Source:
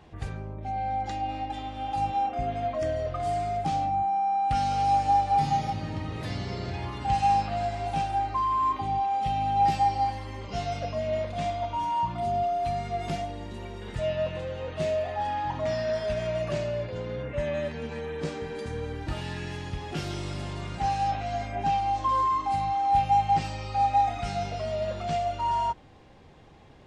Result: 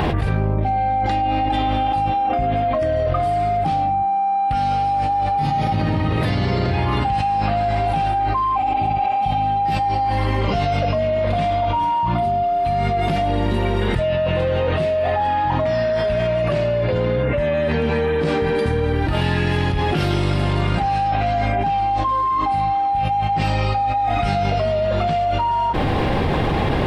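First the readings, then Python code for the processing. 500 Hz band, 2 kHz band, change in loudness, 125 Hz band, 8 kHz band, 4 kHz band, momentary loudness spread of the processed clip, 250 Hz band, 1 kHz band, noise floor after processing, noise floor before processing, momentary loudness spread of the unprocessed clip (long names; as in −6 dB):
+11.0 dB, +12.5 dB, +8.5 dB, +13.0 dB, can't be measured, +10.0 dB, 1 LU, +13.5 dB, +7.0 dB, −20 dBFS, −40 dBFS, 11 LU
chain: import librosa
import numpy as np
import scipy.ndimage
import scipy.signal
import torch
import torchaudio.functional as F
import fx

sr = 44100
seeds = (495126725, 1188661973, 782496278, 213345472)

y = fx.spec_repair(x, sr, seeds[0], start_s=8.58, length_s=0.8, low_hz=390.0, high_hz=3100.0, source='after')
y = fx.peak_eq(y, sr, hz=6700.0, db=-14.0, octaves=0.78)
y = fx.env_flatten(y, sr, amount_pct=100)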